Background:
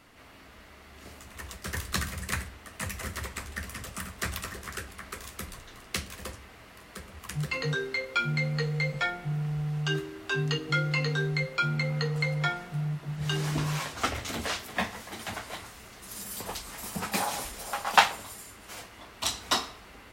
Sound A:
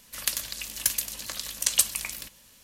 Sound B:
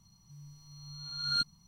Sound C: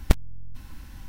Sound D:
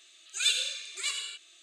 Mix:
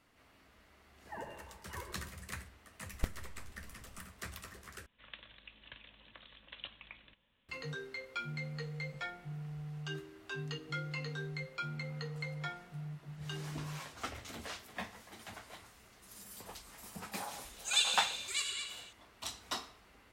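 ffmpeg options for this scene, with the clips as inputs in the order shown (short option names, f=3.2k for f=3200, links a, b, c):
-filter_complex "[4:a]asplit=2[a][b];[0:a]volume=-12.5dB[c];[a]lowpass=f=2.8k:t=q:w=0.5098,lowpass=f=2.8k:t=q:w=0.6013,lowpass=f=2.8k:t=q:w=0.9,lowpass=f=2.8k:t=q:w=2.563,afreqshift=-3300[d];[1:a]aresample=8000,aresample=44100[e];[b]asplit=2[f][g];[g]adelay=221.6,volume=-6dB,highshelf=f=4k:g=-4.99[h];[f][h]amix=inputs=2:normalize=0[i];[c]asplit=2[j][k];[j]atrim=end=4.864[l];[e]atrim=end=2.63,asetpts=PTS-STARTPTS,volume=-15dB[m];[k]atrim=start=7.486[n];[d]atrim=end=1.62,asetpts=PTS-STARTPTS,volume=-9.5dB,afade=t=in:d=0.004:c=hsin,afade=t=out:st=1.616:d=0.004:c=hsin,adelay=720[o];[3:a]atrim=end=1.08,asetpts=PTS-STARTPTS,volume=-16dB,afade=t=in:d=0.004:c=hsin,afade=t=out:st=1.076:d=0.004:c=hsin,adelay=2930[p];[i]atrim=end=1.62,asetpts=PTS-STARTPTS,volume=-3.5dB,afade=t=in:d=0.004:c=hsin,afade=t=out:st=1.616:d=0.004:c=hsin,adelay=17310[q];[l][m]acrossfade=d=0.004:c1=hsin:c2=hsin[r];[r][n]acrossfade=d=0.004:c1=hsin:c2=hsin[s];[s][o][p][q]amix=inputs=4:normalize=0"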